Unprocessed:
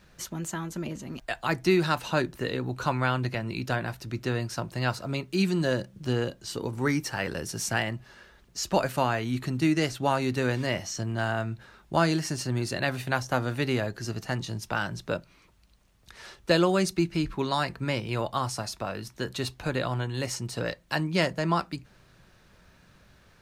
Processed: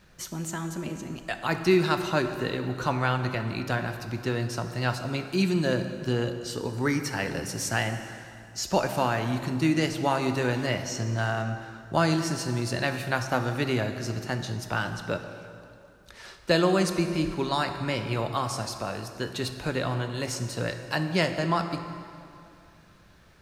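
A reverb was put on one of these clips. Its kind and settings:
dense smooth reverb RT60 2.6 s, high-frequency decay 0.75×, DRR 7 dB

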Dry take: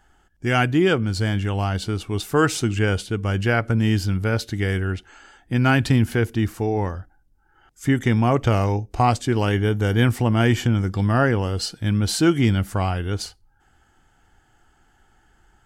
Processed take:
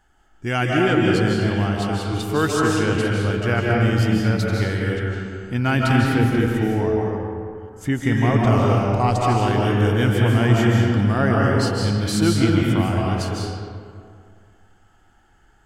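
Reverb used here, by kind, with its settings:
comb and all-pass reverb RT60 2.2 s, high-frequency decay 0.55×, pre-delay 115 ms, DRR −3 dB
level −3 dB

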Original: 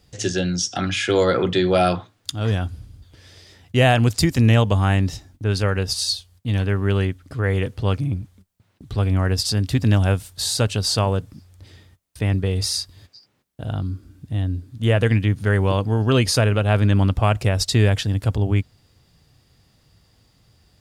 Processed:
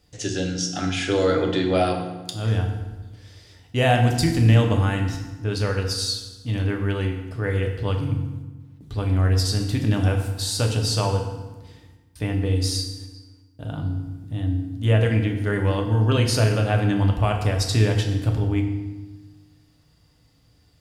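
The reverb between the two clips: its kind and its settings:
feedback delay network reverb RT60 1.2 s, low-frequency decay 1.35×, high-frequency decay 0.75×, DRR 2 dB
level −5 dB

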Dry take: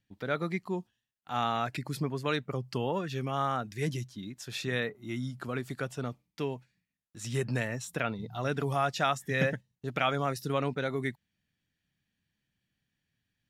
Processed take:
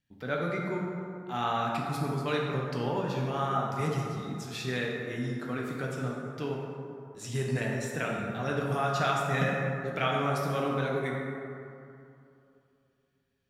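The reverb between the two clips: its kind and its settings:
dense smooth reverb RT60 2.7 s, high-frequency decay 0.4×, DRR −2.5 dB
level −3 dB

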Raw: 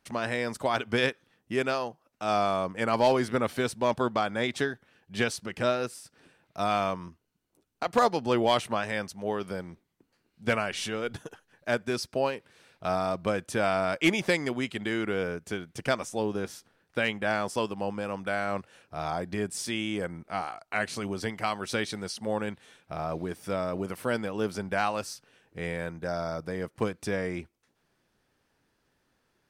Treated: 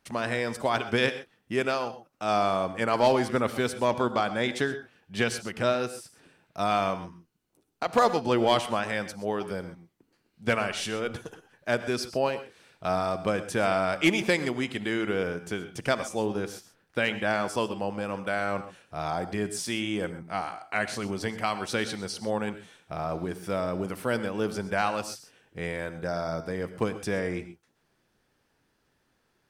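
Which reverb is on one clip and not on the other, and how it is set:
reverb whose tail is shaped and stops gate 150 ms rising, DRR 12 dB
level +1 dB

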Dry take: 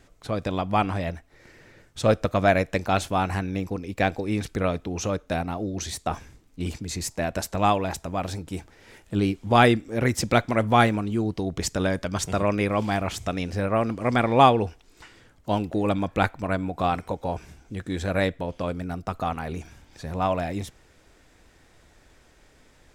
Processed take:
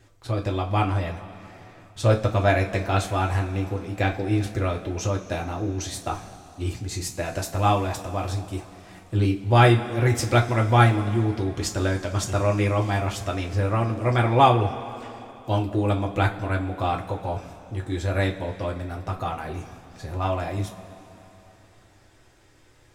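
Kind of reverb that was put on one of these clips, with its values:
coupled-rooms reverb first 0.21 s, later 3.3 s, from −21 dB, DRR −0.5 dB
level −3.5 dB

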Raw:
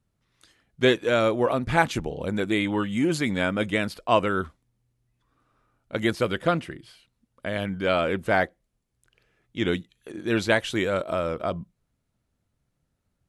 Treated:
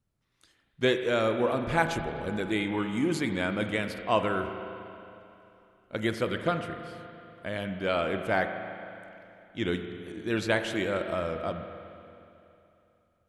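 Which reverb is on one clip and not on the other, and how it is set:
spring reverb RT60 2.9 s, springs 37/45 ms, chirp 50 ms, DRR 6.5 dB
level −5 dB

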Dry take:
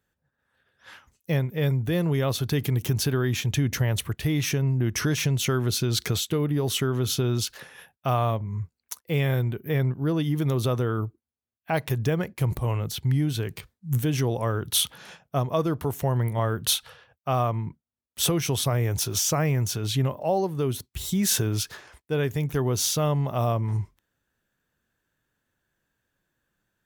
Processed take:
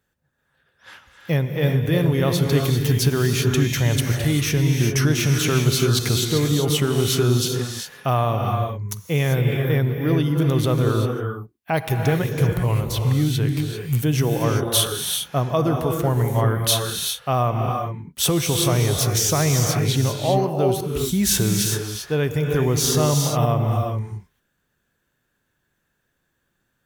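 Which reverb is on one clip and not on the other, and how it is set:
reverb whose tail is shaped and stops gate 420 ms rising, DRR 2.5 dB
level +3.5 dB

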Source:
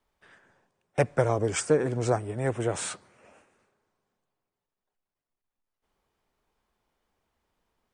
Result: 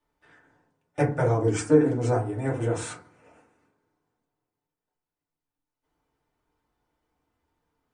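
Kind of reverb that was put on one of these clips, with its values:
feedback delay network reverb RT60 0.37 s, low-frequency decay 1.55×, high-frequency decay 0.4×, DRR −4.5 dB
level −6.5 dB

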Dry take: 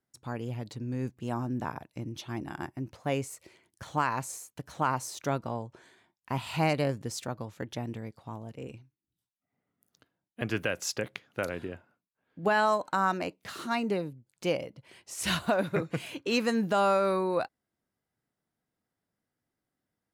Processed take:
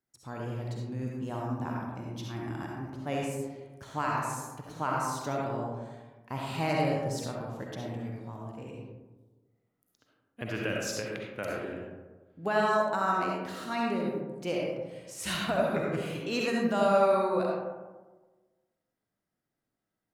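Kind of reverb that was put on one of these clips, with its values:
comb and all-pass reverb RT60 1.3 s, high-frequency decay 0.35×, pre-delay 25 ms, DRR −2.5 dB
level −5 dB

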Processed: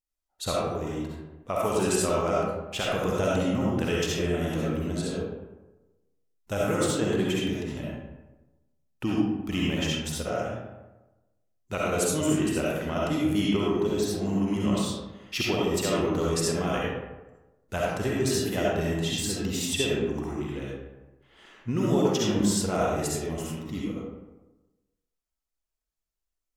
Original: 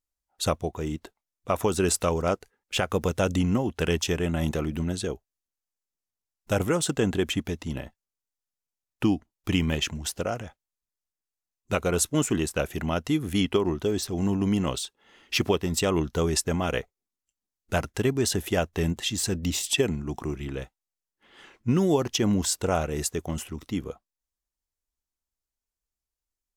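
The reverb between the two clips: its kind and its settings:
comb and all-pass reverb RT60 1.1 s, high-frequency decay 0.5×, pre-delay 25 ms, DRR −5.5 dB
level −6.5 dB

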